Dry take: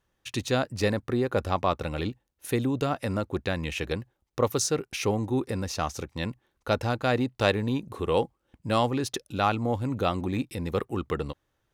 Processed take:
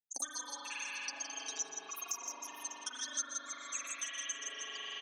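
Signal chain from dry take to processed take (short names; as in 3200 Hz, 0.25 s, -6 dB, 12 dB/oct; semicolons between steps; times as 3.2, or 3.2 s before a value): per-bin expansion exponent 3; speed mistake 33 rpm record played at 78 rpm; comb 7.2 ms, depth 84%; tapped delay 0.12/0.163/0.31/0.595 s -12/-5.5/-13.5/-17 dB; gate -40 dBFS, range -23 dB; band-pass 6300 Hz, Q 17; reverb RT60 4.0 s, pre-delay 40 ms, DRR -8.5 dB; three-band squash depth 100%; gain +12.5 dB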